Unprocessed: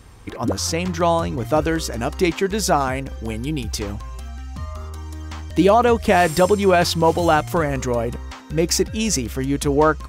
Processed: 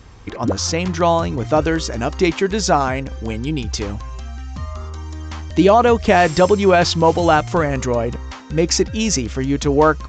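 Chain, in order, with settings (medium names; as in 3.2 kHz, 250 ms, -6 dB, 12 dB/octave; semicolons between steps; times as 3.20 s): resampled via 16 kHz; trim +2.5 dB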